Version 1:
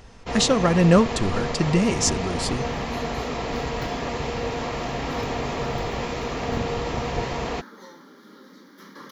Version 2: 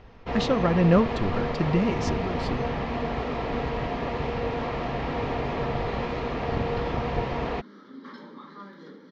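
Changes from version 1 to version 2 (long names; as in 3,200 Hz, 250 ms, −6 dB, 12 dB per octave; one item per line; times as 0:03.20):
speech −3.0 dB
second sound: entry +2.95 s
master: add high-frequency loss of the air 250 metres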